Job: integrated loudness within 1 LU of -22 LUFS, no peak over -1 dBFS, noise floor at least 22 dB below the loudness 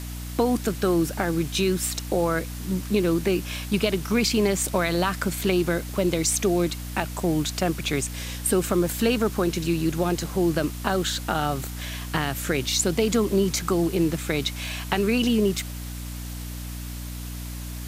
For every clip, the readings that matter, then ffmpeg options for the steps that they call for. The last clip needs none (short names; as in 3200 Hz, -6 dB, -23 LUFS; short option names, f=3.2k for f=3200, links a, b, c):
hum 60 Hz; harmonics up to 300 Hz; hum level -32 dBFS; noise floor -34 dBFS; noise floor target -47 dBFS; loudness -24.5 LUFS; peak -6.0 dBFS; loudness target -22.0 LUFS
-> -af "bandreject=f=60:t=h:w=4,bandreject=f=120:t=h:w=4,bandreject=f=180:t=h:w=4,bandreject=f=240:t=h:w=4,bandreject=f=300:t=h:w=4"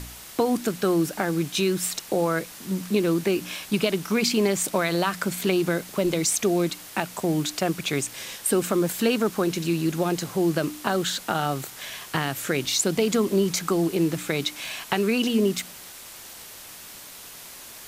hum none; noise floor -43 dBFS; noise floor target -47 dBFS
-> -af "afftdn=nr=6:nf=-43"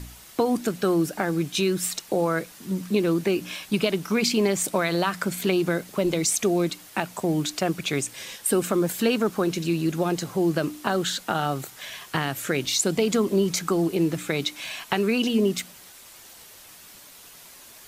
noise floor -48 dBFS; loudness -25.0 LUFS; peak -6.5 dBFS; loudness target -22.0 LUFS
-> -af "volume=3dB"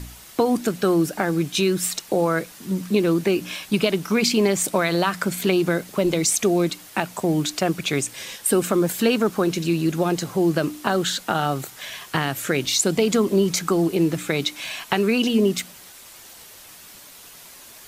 loudness -22.0 LUFS; peak -3.5 dBFS; noise floor -45 dBFS